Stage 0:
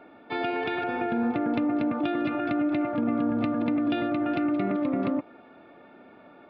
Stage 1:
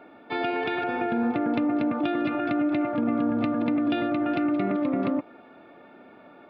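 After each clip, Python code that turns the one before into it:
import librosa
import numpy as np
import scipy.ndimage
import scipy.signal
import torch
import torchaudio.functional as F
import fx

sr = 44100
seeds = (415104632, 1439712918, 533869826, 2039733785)

y = fx.low_shelf(x, sr, hz=79.0, db=-5.5)
y = F.gain(torch.from_numpy(y), 1.5).numpy()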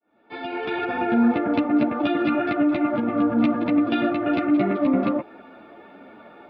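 y = fx.fade_in_head(x, sr, length_s=1.12)
y = fx.ensemble(y, sr)
y = F.gain(torch.from_numpy(y), 7.5).numpy()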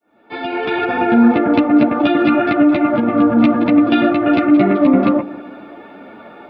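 y = fx.echo_bbd(x, sr, ms=142, stages=1024, feedback_pct=56, wet_db=-17.5)
y = F.gain(torch.from_numpy(y), 8.0).numpy()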